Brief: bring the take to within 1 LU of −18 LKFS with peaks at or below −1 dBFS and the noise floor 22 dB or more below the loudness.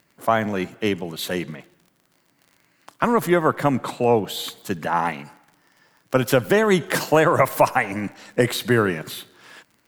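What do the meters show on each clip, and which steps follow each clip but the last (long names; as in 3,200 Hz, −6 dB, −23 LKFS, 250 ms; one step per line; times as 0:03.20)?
crackle rate 34 per second; integrated loudness −21.5 LKFS; sample peak −3.0 dBFS; target loudness −18.0 LKFS
→ click removal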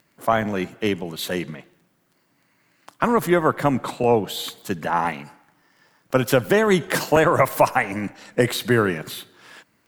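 crackle rate 1.3 per second; integrated loudness −21.5 LKFS; sample peak −3.0 dBFS; target loudness −18.0 LKFS
→ level +3.5 dB
brickwall limiter −1 dBFS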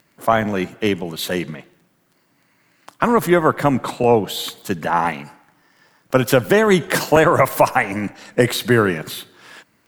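integrated loudness −18.0 LKFS; sample peak −1.0 dBFS; background noise floor −62 dBFS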